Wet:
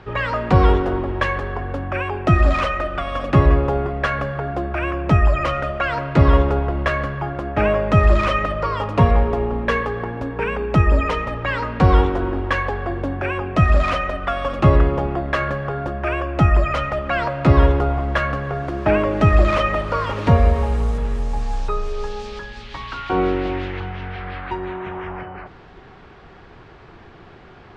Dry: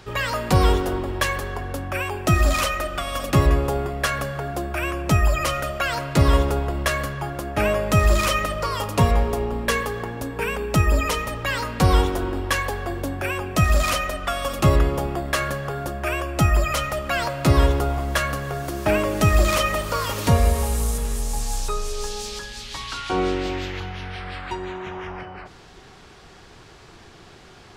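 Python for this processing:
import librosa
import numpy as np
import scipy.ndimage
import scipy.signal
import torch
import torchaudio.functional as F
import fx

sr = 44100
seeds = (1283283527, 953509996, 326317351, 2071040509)

y = scipy.signal.sosfilt(scipy.signal.butter(2, 2200.0, 'lowpass', fs=sr, output='sos'), x)
y = y * 10.0 ** (3.5 / 20.0)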